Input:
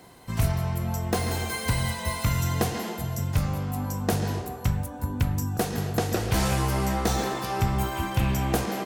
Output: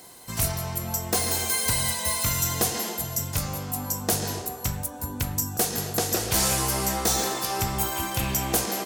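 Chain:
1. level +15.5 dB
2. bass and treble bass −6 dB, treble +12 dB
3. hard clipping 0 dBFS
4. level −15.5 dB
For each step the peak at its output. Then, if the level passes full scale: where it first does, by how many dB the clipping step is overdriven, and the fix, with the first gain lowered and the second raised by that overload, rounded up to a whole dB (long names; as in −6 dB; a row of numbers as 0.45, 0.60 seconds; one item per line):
+3.0, +9.5, 0.0, −15.5 dBFS
step 1, 9.5 dB
step 1 +5.5 dB, step 4 −5.5 dB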